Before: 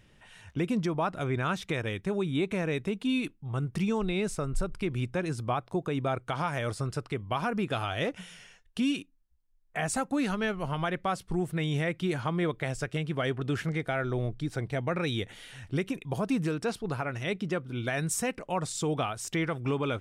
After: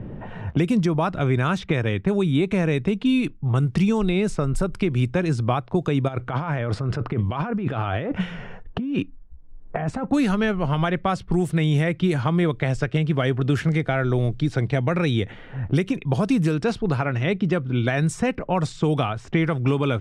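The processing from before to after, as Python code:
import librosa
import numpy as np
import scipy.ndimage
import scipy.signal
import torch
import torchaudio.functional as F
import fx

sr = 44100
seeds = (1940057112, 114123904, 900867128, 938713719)

y = fx.over_compress(x, sr, threshold_db=-38.0, ratio=-1.0, at=(6.07, 10.03), fade=0.02)
y = fx.low_shelf(y, sr, hz=260.0, db=6.5)
y = fx.env_lowpass(y, sr, base_hz=630.0, full_db=-21.5)
y = fx.band_squash(y, sr, depth_pct=70)
y = y * librosa.db_to_amplitude(5.5)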